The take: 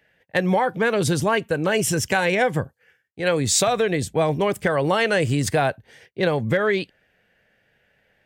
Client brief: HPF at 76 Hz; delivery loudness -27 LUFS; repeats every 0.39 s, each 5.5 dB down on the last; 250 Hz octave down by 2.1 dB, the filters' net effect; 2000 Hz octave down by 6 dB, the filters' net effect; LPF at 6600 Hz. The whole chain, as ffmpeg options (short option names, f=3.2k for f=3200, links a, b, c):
-af "highpass=76,lowpass=6.6k,equalizer=f=250:t=o:g=-3,equalizer=f=2k:t=o:g=-8,aecho=1:1:390|780|1170|1560|1950|2340|2730:0.531|0.281|0.149|0.079|0.0419|0.0222|0.0118,volume=-4.5dB"